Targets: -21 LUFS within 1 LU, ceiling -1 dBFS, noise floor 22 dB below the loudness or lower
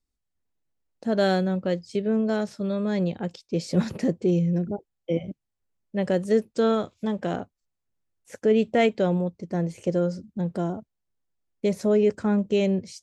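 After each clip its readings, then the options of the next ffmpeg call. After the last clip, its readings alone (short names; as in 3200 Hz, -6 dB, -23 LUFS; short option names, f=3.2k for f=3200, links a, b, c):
loudness -25.5 LUFS; peak -10.0 dBFS; loudness target -21.0 LUFS
-> -af "volume=4.5dB"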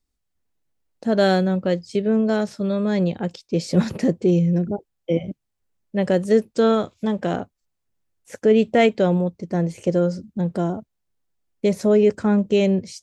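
loudness -21.0 LUFS; peak -5.5 dBFS; noise floor -77 dBFS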